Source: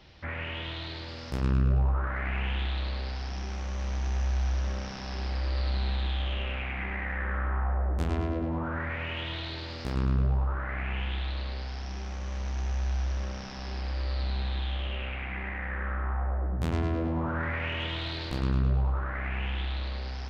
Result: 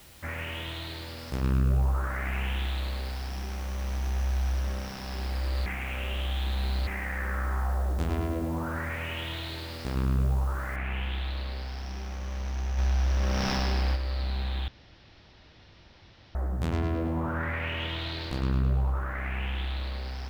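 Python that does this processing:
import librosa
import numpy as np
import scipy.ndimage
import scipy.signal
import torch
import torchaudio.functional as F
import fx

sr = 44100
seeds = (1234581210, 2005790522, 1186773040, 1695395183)

y = fx.noise_floor_step(x, sr, seeds[0], at_s=10.76, before_db=-55, after_db=-68, tilt_db=0.0)
y = fx.env_flatten(y, sr, amount_pct=70, at=(12.77, 13.95), fade=0.02)
y = fx.edit(y, sr, fx.reverse_span(start_s=5.66, length_s=1.21),
    fx.room_tone_fill(start_s=14.68, length_s=1.67), tone=tone)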